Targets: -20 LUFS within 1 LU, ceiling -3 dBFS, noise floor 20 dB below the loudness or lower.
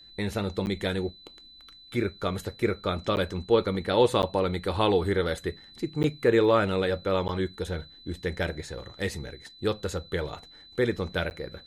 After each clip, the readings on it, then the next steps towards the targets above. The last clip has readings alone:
dropouts 6; longest dropout 9.9 ms; steady tone 4 kHz; tone level -49 dBFS; loudness -28.0 LUFS; peak level -8.5 dBFS; loudness target -20.0 LUFS
-> interpolate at 0.66/3.16/4.22/6.03/7.28/11.30 s, 9.9 ms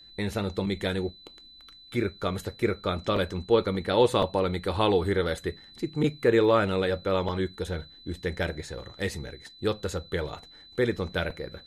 dropouts 0; steady tone 4 kHz; tone level -49 dBFS
-> band-stop 4 kHz, Q 30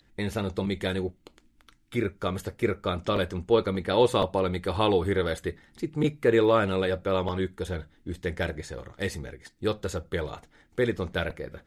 steady tone not found; loudness -28.0 LUFS; peak level -8.5 dBFS; loudness target -20.0 LUFS
-> trim +8 dB; peak limiter -3 dBFS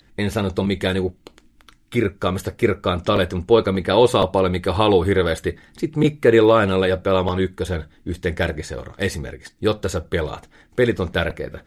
loudness -20.5 LUFS; peak level -3.0 dBFS; noise floor -56 dBFS

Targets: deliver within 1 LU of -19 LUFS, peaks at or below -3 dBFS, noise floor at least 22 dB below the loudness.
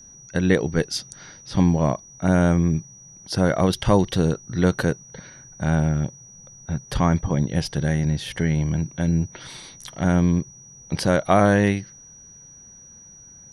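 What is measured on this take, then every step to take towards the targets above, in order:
steady tone 5.8 kHz; tone level -44 dBFS; loudness -22.0 LUFS; peak level -5.0 dBFS; loudness target -19.0 LUFS
-> band-stop 5.8 kHz, Q 30; trim +3 dB; peak limiter -3 dBFS

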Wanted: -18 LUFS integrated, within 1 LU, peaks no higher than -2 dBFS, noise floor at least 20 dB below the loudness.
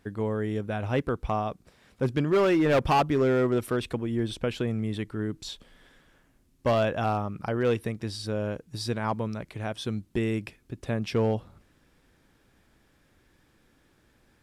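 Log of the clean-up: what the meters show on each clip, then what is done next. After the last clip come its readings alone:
clipped samples 1.1%; clipping level -18.0 dBFS; loudness -28.0 LUFS; peak level -18.0 dBFS; loudness target -18.0 LUFS
-> clip repair -18 dBFS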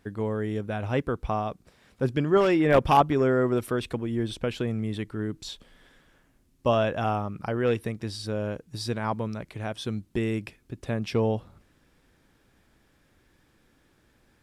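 clipped samples 0.0%; loudness -27.5 LUFS; peak level -9.0 dBFS; loudness target -18.0 LUFS
-> trim +9.5 dB; peak limiter -2 dBFS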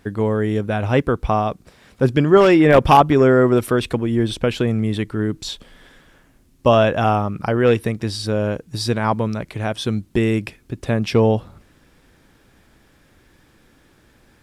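loudness -18.0 LUFS; peak level -2.0 dBFS; noise floor -55 dBFS

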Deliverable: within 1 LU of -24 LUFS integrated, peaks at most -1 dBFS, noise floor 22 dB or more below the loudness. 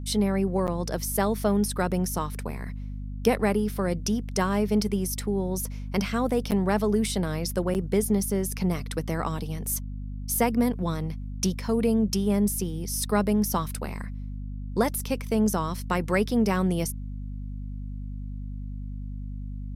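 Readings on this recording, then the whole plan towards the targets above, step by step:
dropouts 3; longest dropout 8.5 ms; hum 50 Hz; highest harmonic 250 Hz; hum level -32 dBFS; loudness -27.0 LUFS; peak level -8.5 dBFS; loudness target -24.0 LUFS
-> interpolate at 0.67/6.51/7.74 s, 8.5 ms; hum notches 50/100/150/200/250 Hz; trim +3 dB

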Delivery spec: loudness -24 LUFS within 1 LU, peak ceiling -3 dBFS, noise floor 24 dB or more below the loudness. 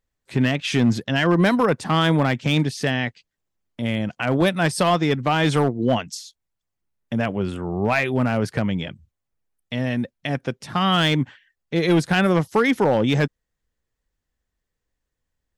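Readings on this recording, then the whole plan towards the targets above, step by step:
clipped samples 0.6%; clipping level -11.0 dBFS; loudness -21.5 LUFS; peak level -11.0 dBFS; loudness target -24.0 LUFS
-> clip repair -11 dBFS; trim -2.5 dB

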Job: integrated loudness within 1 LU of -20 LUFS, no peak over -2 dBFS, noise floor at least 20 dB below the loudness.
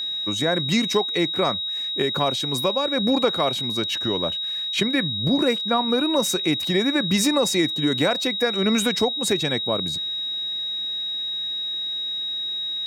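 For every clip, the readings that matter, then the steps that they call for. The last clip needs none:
steady tone 3.8 kHz; tone level -25 dBFS; loudness -22.0 LUFS; peak level -6.5 dBFS; loudness target -20.0 LUFS
-> band-stop 3.8 kHz, Q 30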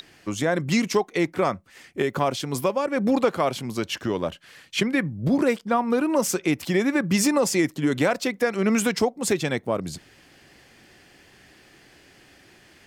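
steady tone not found; loudness -24.0 LUFS; peak level -7.5 dBFS; loudness target -20.0 LUFS
-> trim +4 dB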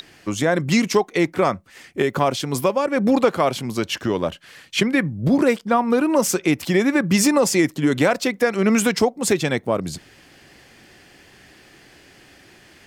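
loudness -20.0 LUFS; peak level -3.5 dBFS; noise floor -50 dBFS

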